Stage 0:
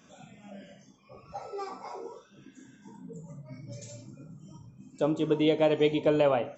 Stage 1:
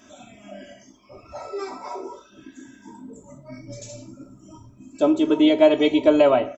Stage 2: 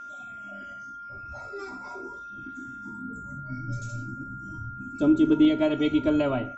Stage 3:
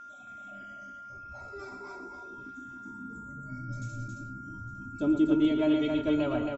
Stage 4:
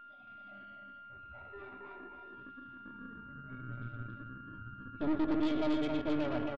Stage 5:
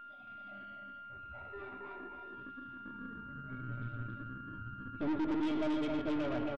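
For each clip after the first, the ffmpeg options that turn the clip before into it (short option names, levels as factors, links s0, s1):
-af "aecho=1:1:3.1:0.97,volume=1.78"
-af "asubboost=boost=11.5:cutoff=200,aeval=exprs='val(0)+0.0316*sin(2*PI*1400*n/s)':c=same,volume=0.398"
-af "aecho=1:1:114|272|858:0.355|0.631|0.112,volume=0.501"
-af "aresample=8000,asoftclip=type=tanh:threshold=0.0422,aresample=44100,aeval=exprs='0.0473*(cos(1*acos(clip(val(0)/0.0473,-1,1)))-cos(1*PI/2))+0.0133*(cos(2*acos(clip(val(0)/0.0473,-1,1)))-cos(2*PI/2))+0.0106*(cos(3*acos(clip(val(0)/0.0473,-1,1)))-cos(3*PI/2))+0.0015*(cos(5*acos(clip(val(0)/0.0473,-1,1)))-cos(5*PI/2))':c=same"
-af "asoftclip=type=tanh:threshold=0.0282,volume=1.33"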